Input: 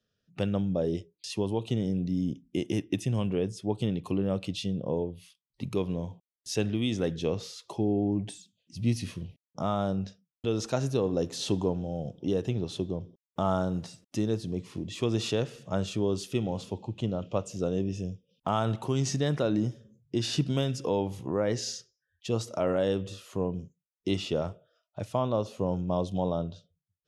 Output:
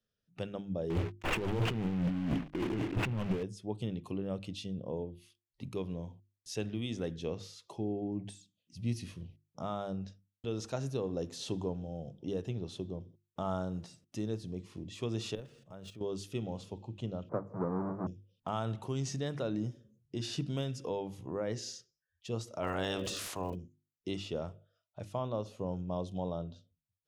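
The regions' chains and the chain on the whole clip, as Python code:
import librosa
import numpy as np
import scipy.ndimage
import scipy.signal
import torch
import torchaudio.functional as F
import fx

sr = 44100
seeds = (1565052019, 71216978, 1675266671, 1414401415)

y = fx.chain(x, sr, fx.cvsd(bps=16000),
    fx.over_compress(threshold_db=-36.0, ratio=-0.5),
    fx.leveller(passes=5), at=(0.9, 3.43))
y = fx.chain(y, sr, fx.level_steps(step_db=13),
    fx.resample_linear(factor=3), at=(15.35, 16.01))
y = fx.chain(y, sr, fx.halfwave_hold(),
    fx.ellip_bandpass(low_hz=120.0, high_hz=1200.0, order=3, stop_db=40),
    fx.band_squash(depth_pct=100), at=(17.29, 18.07))
y = fx.spec_clip(y, sr, under_db=19, at=(22.62, 23.54), fade=0.02)
y = fx.dmg_crackle(y, sr, seeds[0], per_s=99.0, level_db=-40.0, at=(22.62, 23.54), fade=0.02)
y = fx.sustainer(y, sr, db_per_s=23.0, at=(22.62, 23.54), fade=0.02)
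y = fx.low_shelf(y, sr, hz=62.0, db=7.5)
y = fx.hum_notches(y, sr, base_hz=50, count=7)
y = y * librosa.db_to_amplitude(-8.0)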